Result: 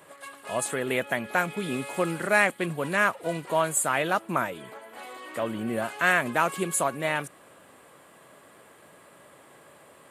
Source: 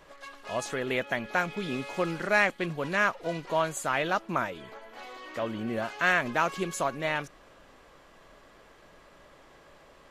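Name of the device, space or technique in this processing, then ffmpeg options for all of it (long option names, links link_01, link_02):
budget condenser microphone: -af "highpass=frequency=97:width=0.5412,highpass=frequency=97:width=1.3066,highshelf=frequency=7200:width_type=q:width=3:gain=8,volume=2.5dB"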